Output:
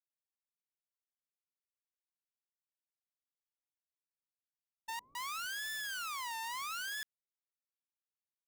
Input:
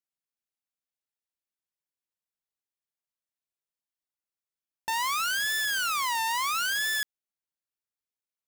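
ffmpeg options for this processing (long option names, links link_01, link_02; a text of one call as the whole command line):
ffmpeg -i in.wav -filter_complex "[0:a]agate=range=-33dB:threshold=-24dB:ratio=3:detection=peak,alimiter=level_in=12.5dB:limit=-24dB:level=0:latency=1,volume=-12.5dB,asettb=1/sr,asplit=3[link_01][link_02][link_03];[link_01]atrim=end=4.994[link_04];[link_02]atrim=start=4.99:end=7.02,asetpts=PTS-STARTPTS,afade=type=in:duration=0.004:curve=qsin,afade=type=out:start_time=2.026:duration=0.004:curve=qsin,acrossover=split=500[link_05][link_06];[link_06]adelay=160[link_07];[link_05][link_07]amix=inputs=2:normalize=0,atrim=end_sample=89523[link_08];[link_03]atrim=start=7.016[link_09];[link_04][link_08]acrossfade=duration=0.004:curve1=hsin:curve2=qsin[link_10];[link_10][link_09]acrossfade=duration=0.004:curve1=qsin:curve2=hsin,volume=1dB" out.wav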